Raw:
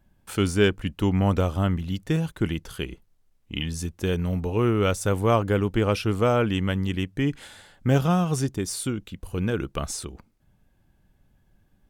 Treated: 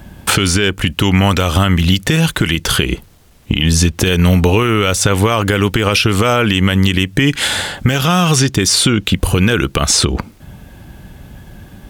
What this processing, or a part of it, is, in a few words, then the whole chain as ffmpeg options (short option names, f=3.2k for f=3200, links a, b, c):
mastering chain: -filter_complex "[0:a]highpass=41,equalizer=f=3.2k:t=o:w=0.77:g=2,acrossover=split=1400|6000[a][b][c];[a]acompressor=threshold=-35dB:ratio=4[d];[b]acompressor=threshold=-34dB:ratio=4[e];[c]acompressor=threshold=-49dB:ratio=4[f];[d][e][f]amix=inputs=3:normalize=0,acompressor=threshold=-39dB:ratio=2,alimiter=level_in=30dB:limit=-1dB:release=50:level=0:latency=1,volume=-1dB"